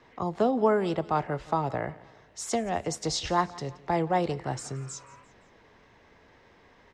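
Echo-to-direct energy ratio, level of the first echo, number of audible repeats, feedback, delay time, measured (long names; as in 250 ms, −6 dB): −20.0 dB, −21.0 dB, 3, 47%, 173 ms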